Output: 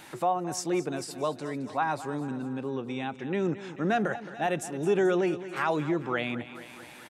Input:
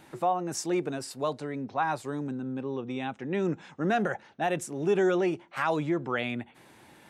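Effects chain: feedback delay 218 ms, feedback 55%, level -15 dB; tape noise reduction on one side only encoder only

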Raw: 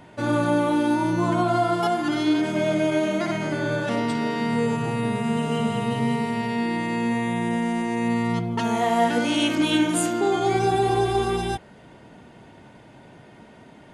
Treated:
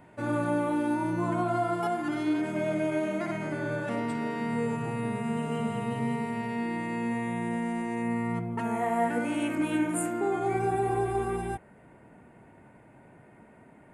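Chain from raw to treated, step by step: high-order bell 4.4 kHz -8.5 dB 1.3 oct, from 8.01 s -16 dB; trim -6.5 dB

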